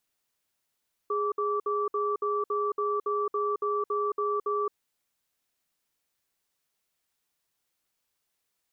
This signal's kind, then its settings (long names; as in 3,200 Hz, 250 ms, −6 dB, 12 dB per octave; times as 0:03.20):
tone pair in a cadence 414 Hz, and 1,160 Hz, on 0.22 s, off 0.06 s, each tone −28 dBFS 3.63 s